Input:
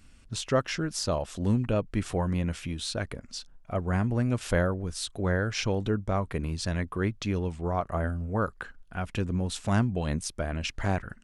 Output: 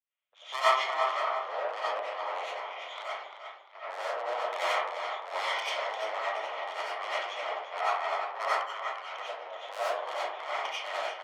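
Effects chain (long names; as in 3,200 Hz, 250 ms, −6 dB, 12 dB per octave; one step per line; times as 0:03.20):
lower of the sound and its delayed copy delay 0.92 ms
downsampling to 8,000 Hz
harmonic generator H 4 −15 dB, 7 −22 dB, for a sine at −13 dBFS
on a send: repeating echo 347 ms, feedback 43%, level −8 dB
on the sum: tube saturation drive 27 dB, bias 0.3
Butterworth high-pass 490 Hz 48 dB per octave
comb and all-pass reverb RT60 0.78 s, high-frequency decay 0.45×, pre-delay 50 ms, DRR −8.5 dB
multiband upward and downward expander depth 70%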